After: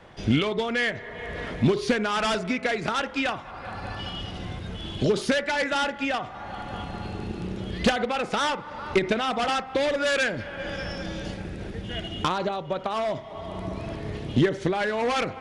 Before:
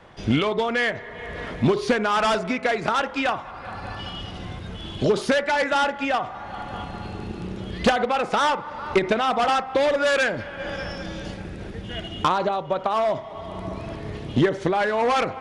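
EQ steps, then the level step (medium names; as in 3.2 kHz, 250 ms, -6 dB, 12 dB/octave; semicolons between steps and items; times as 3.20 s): dynamic bell 760 Hz, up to -5 dB, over -33 dBFS, Q 0.75; peaking EQ 1.1 kHz -2.5 dB; 0.0 dB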